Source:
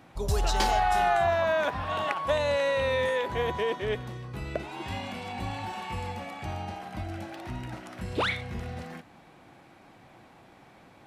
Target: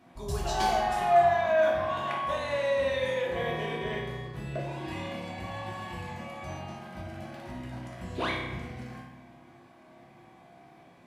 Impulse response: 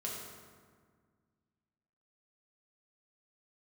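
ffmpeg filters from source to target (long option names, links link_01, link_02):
-filter_complex "[0:a]asettb=1/sr,asplit=3[link_01][link_02][link_03];[link_01]atrim=end=2.764[link_04];[link_02]atrim=start=2.76:end=5.08,asetpts=PTS-STARTPTS,afade=type=in:duration=0.004:curve=qsin,afade=type=out:start_time=2.316:duration=0.004:curve=qsin,asplit=2[link_05][link_06];[link_06]adelay=34,volume=-4.5dB[link_07];[link_05][link_07]amix=inputs=2:normalize=0,atrim=end_sample=102312[link_08];[link_03]atrim=start=5.076[link_09];[link_04][link_08]acrossfade=duration=0.004:curve1=hsin:curve2=qsin[link_10];[link_10][link_09]acrossfade=duration=0.004:curve1=qsin:curve2=hsin[link_11];[1:a]atrim=start_sample=2205,asetrate=70560,aresample=44100[link_12];[link_11][link_12]afir=irnorm=-1:irlink=0"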